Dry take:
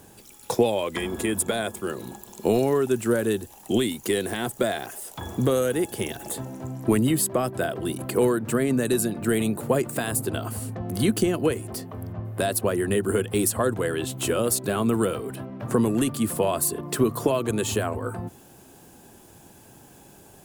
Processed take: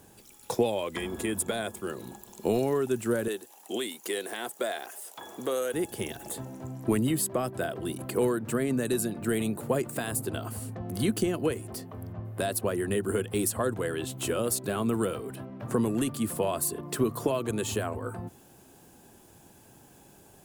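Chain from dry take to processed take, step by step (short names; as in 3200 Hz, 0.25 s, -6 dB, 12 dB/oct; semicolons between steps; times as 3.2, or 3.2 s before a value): 3.28–5.74 HPF 410 Hz 12 dB/oct; gain -5 dB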